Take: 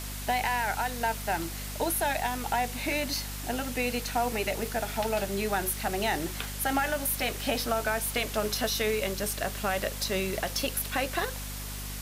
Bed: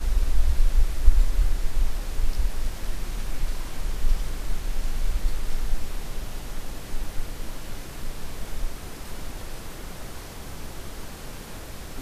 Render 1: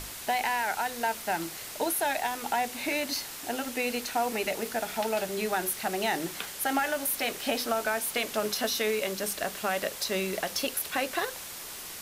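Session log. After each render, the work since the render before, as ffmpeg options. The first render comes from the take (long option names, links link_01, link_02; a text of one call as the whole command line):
ffmpeg -i in.wav -af "bandreject=frequency=50:width_type=h:width=6,bandreject=frequency=100:width_type=h:width=6,bandreject=frequency=150:width_type=h:width=6,bandreject=frequency=200:width_type=h:width=6,bandreject=frequency=250:width_type=h:width=6" out.wav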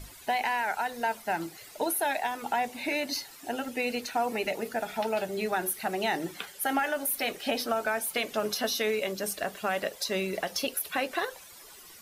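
ffmpeg -i in.wav -af "afftdn=noise_reduction=13:noise_floor=-41" out.wav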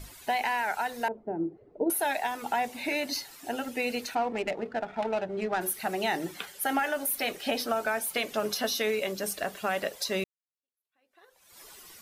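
ffmpeg -i in.wav -filter_complex "[0:a]asettb=1/sr,asplit=3[link_01][link_02][link_03];[link_01]atrim=end=1.084[link_04];[link_02]atrim=start=1.08:end=1.9,asetpts=PTS-STARTPTS,afade=type=in:duration=0.004:curve=qsin,afade=type=out:start_time=0.816:duration=0.004:curve=qsin,lowpass=frequency=400:width_type=q:width=2.4[link_05];[link_03]atrim=start=1.896[link_06];[link_04][link_05]acrossfade=duration=0.004:curve1=hsin:curve2=qsin[link_07];[link_07][link_06]acrossfade=duration=0.004:curve1=qsin:curve2=hsin,asplit=3[link_08][link_09][link_10];[link_08]afade=type=out:start_time=4.14:duration=0.02[link_11];[link_09]adynamicsmooth=sensitivity=3:basefreq=1100,afade=type=in:start_time=4.14:duration=0.02,afade=type=out:start_time=5.6:duration=0.02[link_12];[link_10]afade=type=in:start_time=5.6:duration=0.02[link_13];[link_11][link_12][link_13]amix=inputs=3:normalize=0,asplit=2[link_14][link_15];[link_14]atrim=end=10.24,asetpts=PTS-STARTPTS,afade=type=out:start_time=10.236:duration=0.004:curve=hsin[link_16];[link_15]atrim=start=10.24,asetpts=PTS-STARTPTS,afade=type=in:duration=1.36:curve=exp[link_17];[link_16][link_17]concat=n=2:v=0:a=1" out.wav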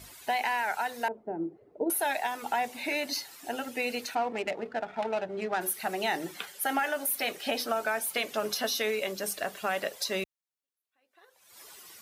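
ffmpeg -i in.wav -af "highpass=62,lowshelf=frequency=310:gain=-5.5" out.wav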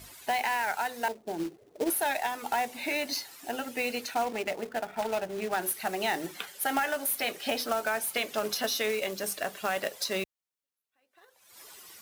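ffmpeg -i in.wav -af "acrusher=bits=3:mode=log:mix=0:aa=0.000001" out.wav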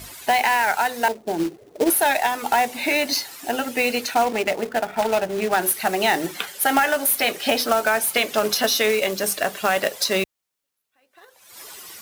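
ffmpeg -i in.wav -af "volume=10dB" out.wav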